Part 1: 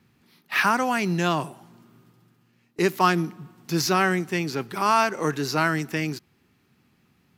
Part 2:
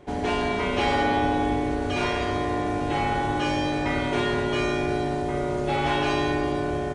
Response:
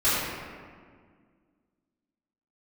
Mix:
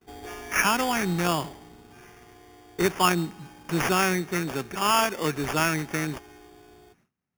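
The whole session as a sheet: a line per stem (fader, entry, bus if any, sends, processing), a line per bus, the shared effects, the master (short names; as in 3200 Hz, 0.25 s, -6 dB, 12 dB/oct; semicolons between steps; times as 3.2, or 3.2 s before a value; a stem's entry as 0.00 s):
-2.0 dB, 0.00 s, no send, high shelf 5800 Hz +5.5 dB
-16.5 dB, 0.00 s, no send, high shelf 2100 Hz +8.5 dB; comb 2.6 ms, depth 87%; auto duck -13 dB, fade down 1.80 s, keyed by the first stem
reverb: off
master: gate with hold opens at -53 dBFS; sample-and-hold 11×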